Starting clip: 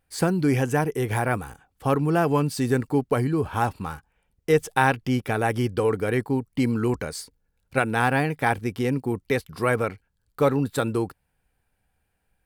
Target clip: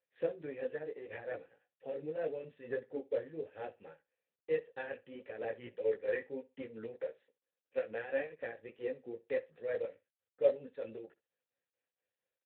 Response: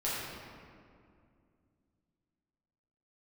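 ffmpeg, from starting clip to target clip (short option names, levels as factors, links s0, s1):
-filter_complex "[0:a]asplit=3[s0][s1][s2];[s0]afade=t=out:st=5.59:d=0.02[s3];[s1]equalizer=f=2000:t=o:w=0.77:g=6,afade=t=in:st=5.59:d=0.02,afade=t=out:st=6.4:d=0.02[s4];[s2]afade=t=in:st=6.4:d=0.02[s5];[s3][s4][s5]amix=inputs=3:normalize=0,asplit=3[s6][s7][s8];[s6]afade=t=out:st=6.97:d=0.02[s9];[s7]highpass=210,afade=t=in:st=6.97:d=0.02,afade=t=out:st=7.77:d=0.02[s10];[s8]afade=t=in:st=7.77:d=0.02[s11];[s9][s10][s11]amix=inputs=3:normalize=0,flanger=delay=17.5:depth=2.1:speed=0.71,asettb=1/sr,asplit=3[s12][s13][s14];[s12]atrim=end=3.444[s15];[s13]atrim=start=3.44:end=4.89,asetpts=PTS-STARTPTS,afade=t=in:d=0.004:c=qsin,afade=t=out:st=1.446:d=0.004:c=qsin,asoftclip=type=hard:threshold=0.133[s16];[s14]atrim=start=4.886[s17];[s15][s16]acrossfade=d=0.004:c1=hsin:c2=qsin[s18];[s18][s17]acrossfade=d=0.004:c1=qsin:c2=hsin,tremolo=f=4.4:d=0.59,asplit=3[s19][s20][s21];[s19]bandpass=f=530:t=q:w=8,volume=1[s22];[s20]bandpass=f=1840:t=q:w=8,volume=0.501[s23];[s21]bandpass=f=2480:t=q:w=8,volume=0.355[s24];[s22][s23][s24]amix=inputs=3:normalize=0,flanger=delay=1.4:depth=8.4:regen=-51:speed=1.7:shape=triangular,aecho=1:1:63|126:0.0944|0.0179,volume=1.58" -ar 8000 -c:a libspeex -b:a 11k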